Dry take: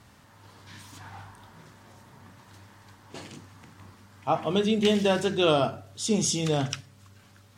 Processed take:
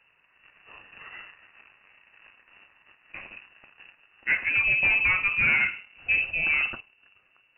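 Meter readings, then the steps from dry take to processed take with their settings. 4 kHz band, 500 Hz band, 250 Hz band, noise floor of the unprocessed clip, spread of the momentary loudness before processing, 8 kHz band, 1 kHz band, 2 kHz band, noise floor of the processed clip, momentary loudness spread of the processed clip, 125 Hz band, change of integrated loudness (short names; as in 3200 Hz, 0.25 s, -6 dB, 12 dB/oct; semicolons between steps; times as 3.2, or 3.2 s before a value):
-8.5 dB, -22.5 dB, -20.5 dB, -56 dBFS, 22 LU, under -40 dB, -8.5 dB, +16.0 dB, -65 dBFS, 21 LU, -13.0 dB, +3.0 dB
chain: sample leveller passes 2; inverted band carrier 2800 Hz; gain -5.5 dB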